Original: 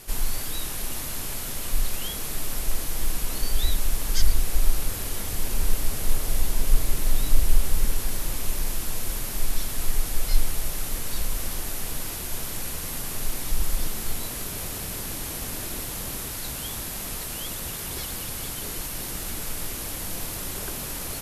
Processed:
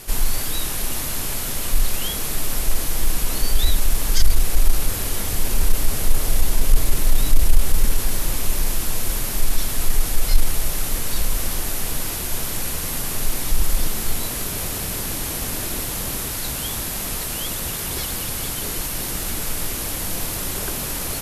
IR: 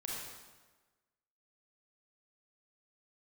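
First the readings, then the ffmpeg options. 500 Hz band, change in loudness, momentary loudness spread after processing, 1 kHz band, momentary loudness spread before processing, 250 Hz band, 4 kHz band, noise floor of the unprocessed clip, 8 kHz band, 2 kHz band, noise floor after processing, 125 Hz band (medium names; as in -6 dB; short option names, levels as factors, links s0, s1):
+6.0 dB, +6.0 dB, 3 LU, +6.0 dB, 4 LU, +6.0 dB, +6.0 dB, -33 dBFS, +6.0 dB, +6.0 dB, -27 dBFS, +5.5 dB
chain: -af "acontrast=58"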